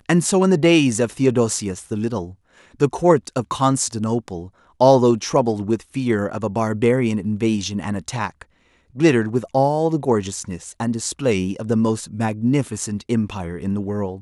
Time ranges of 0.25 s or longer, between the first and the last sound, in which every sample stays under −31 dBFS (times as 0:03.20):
0:02.30–0:02.80
0:04.46–0:04.81
0:08.42–0:08.97